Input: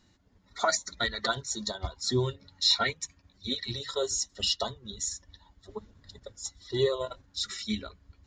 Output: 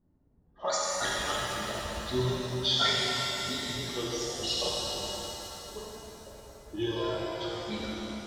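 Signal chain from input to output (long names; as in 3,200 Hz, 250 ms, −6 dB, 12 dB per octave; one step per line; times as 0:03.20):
pitch shifter gated in a rhythm −2.5 semitones, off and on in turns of 348 ms
low-pass that shuts in the quiet parts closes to 540 Hz, open at −23 dBFS
reverb with rising layers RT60 3.6 s, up +7 semitones, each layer −8 dB, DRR −6.5 dB
level −6 dB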